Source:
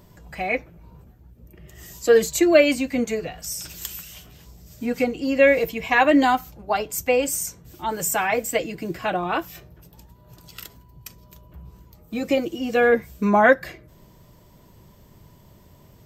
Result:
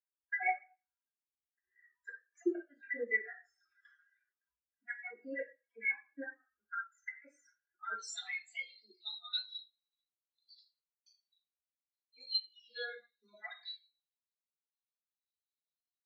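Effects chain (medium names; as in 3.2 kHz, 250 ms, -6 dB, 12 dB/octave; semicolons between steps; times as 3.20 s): random holes in the spectrogram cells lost 39%; compression 2.5:1, threshold -22 dBFS, peak gain reduction 8.5 dB; band-pass filter 1.6 kHz, Q 9.3, from 7.97 s 4 kHz; inverted gate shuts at -36 dBFS, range -33 dB; reverberation RT60 0.70 s, pre-delay 3 ms, DRR -7 dB; spectral contrast expander 2.5:1; trim +5 dB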